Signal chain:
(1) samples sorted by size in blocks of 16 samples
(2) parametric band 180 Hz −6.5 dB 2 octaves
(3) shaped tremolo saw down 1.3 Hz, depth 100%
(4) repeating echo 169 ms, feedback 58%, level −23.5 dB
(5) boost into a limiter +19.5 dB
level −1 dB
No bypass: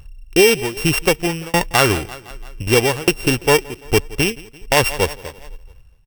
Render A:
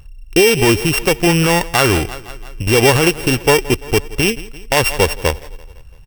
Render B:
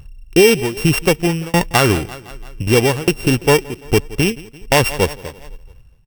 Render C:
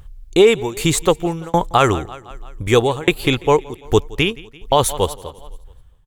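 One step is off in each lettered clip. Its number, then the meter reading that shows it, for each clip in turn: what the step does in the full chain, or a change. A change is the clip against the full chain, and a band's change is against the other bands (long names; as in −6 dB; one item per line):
3, change in momentary loudness spread −6 LU
2, 125 Hz band +4.5 dB
1, distortion level −6 dB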